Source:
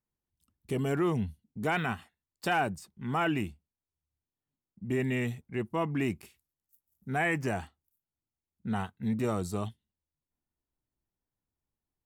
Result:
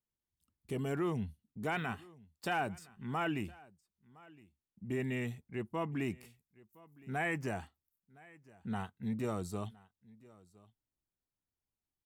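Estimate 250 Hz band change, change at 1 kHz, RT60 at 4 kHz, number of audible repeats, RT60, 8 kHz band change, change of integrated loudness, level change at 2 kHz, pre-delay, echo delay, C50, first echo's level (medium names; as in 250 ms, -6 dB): -6.0 dB, -6.0 dB, no reverb, 1, no reverb, -6.0 dB, -6.0 dB, -6.0 dB, no reverb, 1014 ms, no reverb, -23.0 dB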